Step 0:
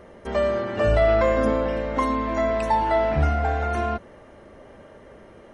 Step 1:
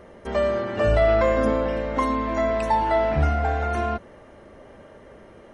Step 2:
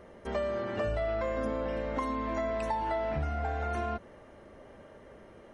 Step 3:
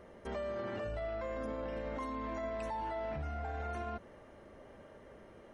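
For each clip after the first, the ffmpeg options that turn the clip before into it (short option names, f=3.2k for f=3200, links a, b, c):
-af anull
-af "acompressor=threshold=-23dB:ratio=6,volume=-5.5dB"
-af "alimiter=level_in=5dB:limit=-24dB:level=0:latency=1:release=18,volume=-5dB,volume=-3dB"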